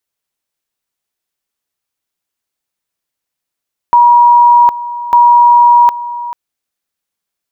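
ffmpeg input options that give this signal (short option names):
-f lavfi -i "aevalsrc='pow(10,(-2.5-15.5*gte(mod(t,1.2),0.76))/20)*sin(2*PI*958*t)':d=2.4:s=44100"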